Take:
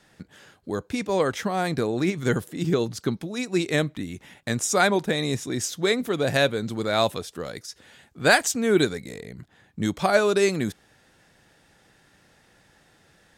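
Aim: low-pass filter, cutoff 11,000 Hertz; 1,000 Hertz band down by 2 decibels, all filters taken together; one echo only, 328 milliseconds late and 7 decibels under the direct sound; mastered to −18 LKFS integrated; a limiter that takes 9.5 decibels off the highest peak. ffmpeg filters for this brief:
ffmpeg -i in.wav -af "lowpass=11000,equalizer=frequency=1000:width_type=o:gain=-3,alimiter=limit=-16dB:level=0:latency=1,aecho=1:1:328:0.447,volume=9dB" out.wav

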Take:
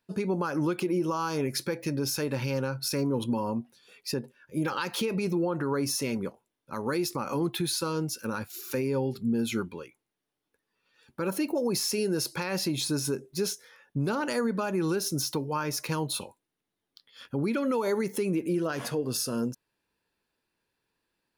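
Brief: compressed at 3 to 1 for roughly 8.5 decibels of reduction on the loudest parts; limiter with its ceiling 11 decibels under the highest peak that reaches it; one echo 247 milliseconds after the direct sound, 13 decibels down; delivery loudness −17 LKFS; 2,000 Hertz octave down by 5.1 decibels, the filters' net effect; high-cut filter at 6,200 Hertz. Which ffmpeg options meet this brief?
ffmpeg -i in.wav -af "lowpass=6200,equalizer=frequency=2000:width_type=o:gain=-7.5,acompressor=threshold=-36dB:ratio=3,alimiter=level_in=10dB:limit=-24dB:level=0:latency=1,volume=-10dB,aecho=1:1:247:0.224,volume=25.5dB" out.wav

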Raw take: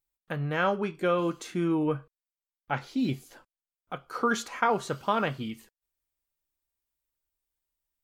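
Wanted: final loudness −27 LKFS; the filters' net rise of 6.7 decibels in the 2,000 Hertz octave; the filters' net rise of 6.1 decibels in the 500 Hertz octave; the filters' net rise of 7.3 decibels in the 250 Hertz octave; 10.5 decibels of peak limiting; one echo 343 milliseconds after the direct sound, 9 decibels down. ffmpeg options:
ffmpeg -i in.wav -af "equalizer=frequency=250:width_type=o:gain=8,equalizer=frequency=500:width_type=o:gain=4.5,equalizer=frequency=2000:width_type=o:gain=9,alimiter=limit=-15dB:level=0:latency=1,aecho=1:1:343:0.355,volume=-1dB" out.wav

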